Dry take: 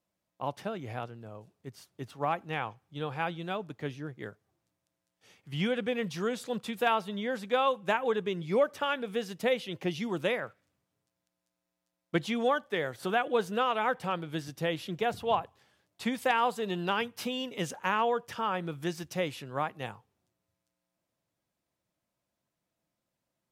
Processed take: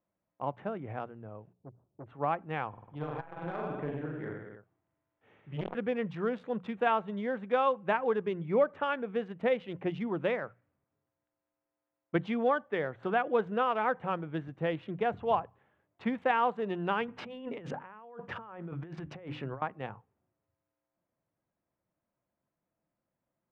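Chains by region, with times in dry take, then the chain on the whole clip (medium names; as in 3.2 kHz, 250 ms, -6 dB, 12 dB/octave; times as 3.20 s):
1.53–2.06 s: Gaussian low-pass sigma 11 samples + transformer saturation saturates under 670 Hz
2.69–5.75 s: hard clipper -26.5 dBFS + reverse bouncing-ball echo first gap 40 ms, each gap 1.1×, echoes 6, each echo -2 dB + transformer saturation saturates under 820 Hz
17.08–19.62 s: treble shelf 9 kHz -11.5 dB + hum notches 50/100/150/200/250/300 Hz + compressor with a negative ratio -42 dBFS
whole clip: local Wiener filter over 9 samples; low-pass 2.1 kHz 12 dB/octave; hum notches 60/120/180 Hz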